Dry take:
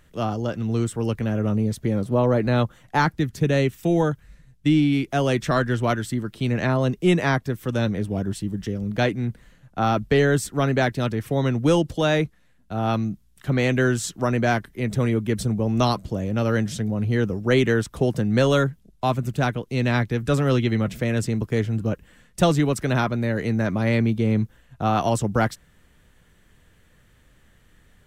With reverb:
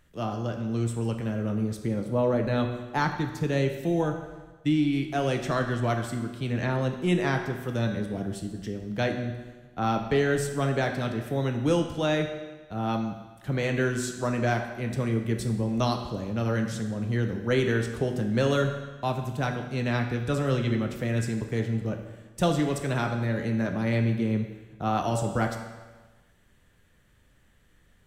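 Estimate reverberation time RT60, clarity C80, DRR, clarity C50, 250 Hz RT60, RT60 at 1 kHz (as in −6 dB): 1.3 s, 8.5 dB, 4.0 dB, 6.5 dB, 1.3 s, 1.3 s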